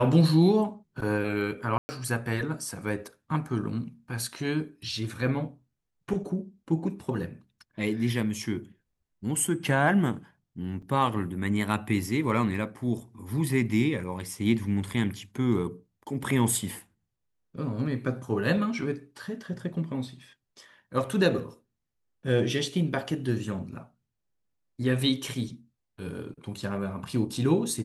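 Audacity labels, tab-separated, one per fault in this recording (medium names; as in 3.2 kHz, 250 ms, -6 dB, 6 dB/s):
1.780000	1.890000	dropout 110 ms
10.820000	10.820000	dropout 4.6 ms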